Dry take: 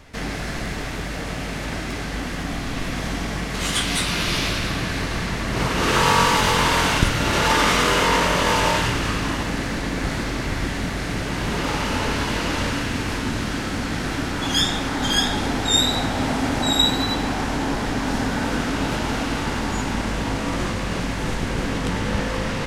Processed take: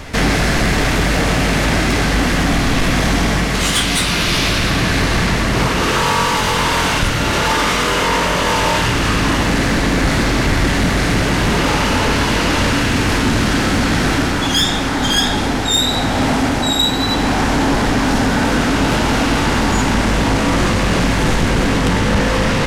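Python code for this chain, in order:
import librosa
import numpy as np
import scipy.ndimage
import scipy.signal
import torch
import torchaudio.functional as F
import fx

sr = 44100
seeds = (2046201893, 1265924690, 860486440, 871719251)

y = fx.rider(x, sr, range_db=10, speed_s=0.5)
y = 10.0 ** (-16.0 / 20.0) * np.tanh(y / 10.0 ** (-16.0 / 20.0))
y = y * librosa.db_to_amplitude(8.5)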